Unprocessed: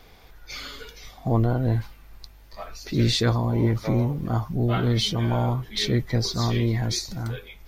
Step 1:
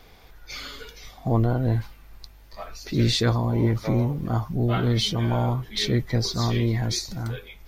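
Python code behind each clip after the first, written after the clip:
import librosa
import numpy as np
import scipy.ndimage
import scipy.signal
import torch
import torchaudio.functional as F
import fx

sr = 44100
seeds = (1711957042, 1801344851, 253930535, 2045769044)

y = x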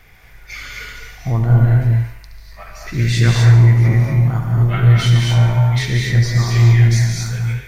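y = fx.graphic_eq(x, sr, hz=(125, 250, 500, 1000, 2000, 4000, 8000), db=(6, -7, -5, -4, 10, -9, 3))
y = fx.echo_thinned(y, sr, ms=71, feedback_pct=62, hz=270.0, wet_db=-10.0)
y = fx.rev_gated(y, sr, seeds[0], gate_ms=280, shape='rising', drr_db=0.0)
y = y * librosa.db_to_amplitude(2.5)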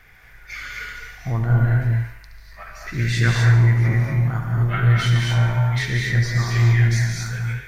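y = fx.peak_eq(x, sr, hz=1600.0, db=8.5, octaves=0.76)
y = y * librosa.db_to_amplitude(-5.5)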